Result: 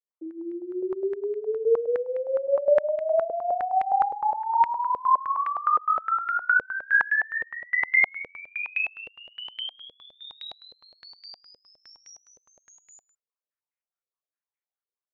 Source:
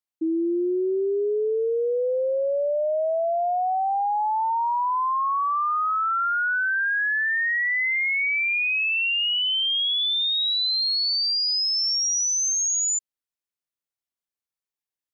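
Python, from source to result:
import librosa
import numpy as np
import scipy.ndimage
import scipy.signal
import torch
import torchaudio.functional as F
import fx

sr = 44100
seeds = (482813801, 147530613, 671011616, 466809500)

y = scipy.signal.sosfilt(scipy.signal.butter(4, 370.0, 'highpass', fs=sr, output='sos'), x)
y = fx.echo_multitap(y, sr, ms=(41, 66, 88, 90, 156, 161), db=(-6.5, -19.5, -13.0, -19.5, -16.5, -6.0))
y = fx.filter_held_lowpass(y, sr, hz=9.7, low_hz=490.0, high_hz=2100.0)
y = F.gain(torch.from_numpy(y), -8.5).numpy()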